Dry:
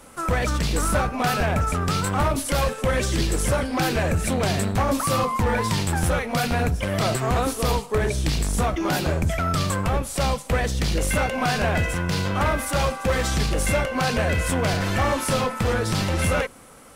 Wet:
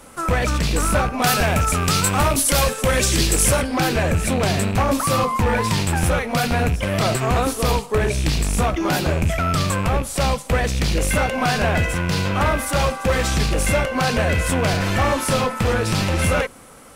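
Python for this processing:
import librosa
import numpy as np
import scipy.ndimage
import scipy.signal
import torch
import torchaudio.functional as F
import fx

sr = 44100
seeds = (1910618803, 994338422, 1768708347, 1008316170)

y = fx.rattle_buzz(x, sr, strikes_db=-24.0, level_db=-25.0)
y = fx.high_shelf(y, sr, hz=3900.0, db=10.0, at=(1.22, 3.62))
y = F.gain(torch.from_numpy(y), 3.0).numpy()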